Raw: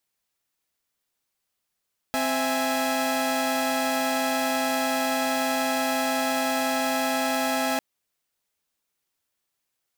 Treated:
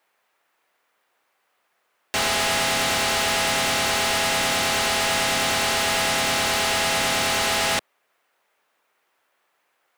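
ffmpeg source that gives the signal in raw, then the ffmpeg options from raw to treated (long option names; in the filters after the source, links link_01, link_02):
-f lavfi -i "aevalsrc='0.0562*((2*mod(261.63*t,1)-1)+(2*mod(659.26*t,1)-1)+(2*mod(830.61*t,1)-1))':duration=5.65:sample_rate=44100"
-filter_complex "[0:a]highpass=120,acrossover=split=400 2400:gain=0.141 1 0.126[link_01][link_02][link_03];[link_01][link_02][link_03]amix=inputs=3:normalize=0,asplit=2[link_04][link_05];[link_05]aeval=exprs='0.15*sin(PI/2*8.91*val(0)/0.15)':channel_layout=same,volume=-4dB[link_06];[link_04][link_06]amix=inputs=2:normalize=0"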